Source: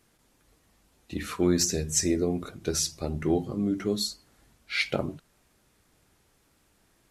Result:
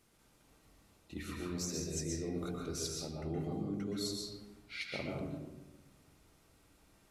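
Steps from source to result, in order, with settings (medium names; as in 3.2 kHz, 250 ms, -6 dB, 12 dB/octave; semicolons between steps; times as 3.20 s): band-stop 1.7 kHz, Q 11; reverse; compression 6:1, threshold -35 dBFS, peak gain reduction 16 dB; reverse; reverberation RT60 1.1 s, pre-delay 116 ms, DRR -1 dB; trim -4 dB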